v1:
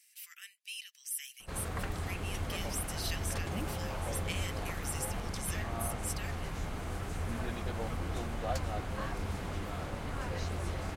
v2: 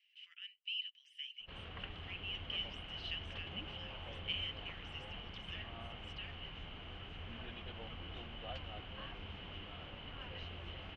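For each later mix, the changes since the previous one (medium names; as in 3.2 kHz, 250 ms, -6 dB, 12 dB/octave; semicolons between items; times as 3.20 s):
master: add four-pole ladder low-pass 3.1 kHz, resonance 85%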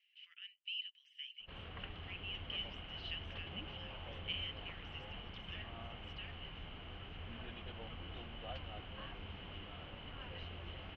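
master: add distance through air 110 m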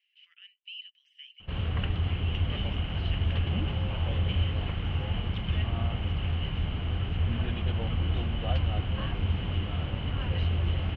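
background +10.5 dB; master: add peaking EQ 86 Hz +13.5 dB 2.9 oct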